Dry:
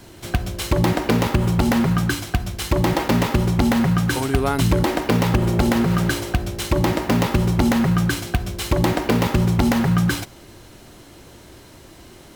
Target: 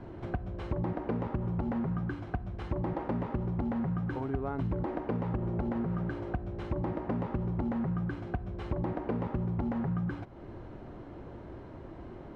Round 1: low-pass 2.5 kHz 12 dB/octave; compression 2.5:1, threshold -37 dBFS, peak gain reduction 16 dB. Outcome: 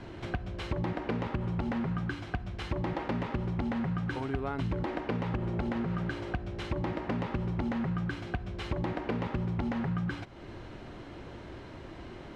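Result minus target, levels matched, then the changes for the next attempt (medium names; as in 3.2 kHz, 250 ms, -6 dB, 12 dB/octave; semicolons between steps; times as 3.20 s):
2 kHz band +6.5 dB
change: low-pass 1.1 kHz 12 dB/octave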